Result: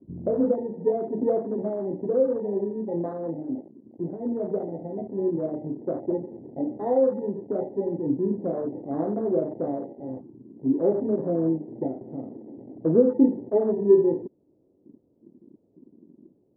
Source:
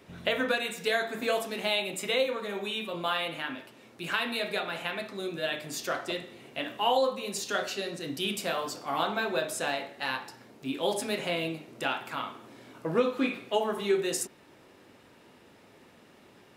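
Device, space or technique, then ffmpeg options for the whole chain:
under water: -af "lowpass=frequency=530:width=0.5412,lowpass=frequency=530:width=1.3066,equalizer=frequency=310:width_type=o:width=0.46:gain=5,afwtdn=0.00794,volume=8.5dB"

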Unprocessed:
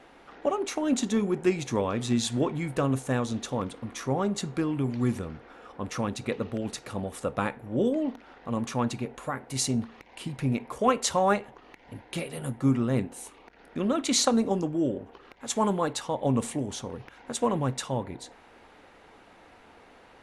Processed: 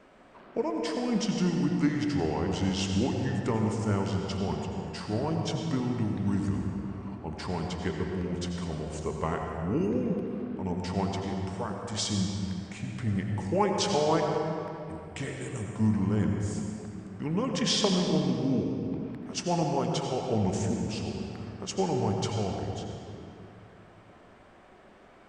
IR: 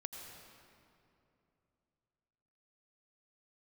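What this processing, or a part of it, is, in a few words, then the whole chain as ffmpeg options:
slowed and reverbed: -filter_complex "[0:a]asetrate=35280,aresample=44100[link_01];[1:a]atrim=start_sample=2205[link_02];[link_01][link_02]afir=irnorm=-1:irlink=0,volume=1dB"

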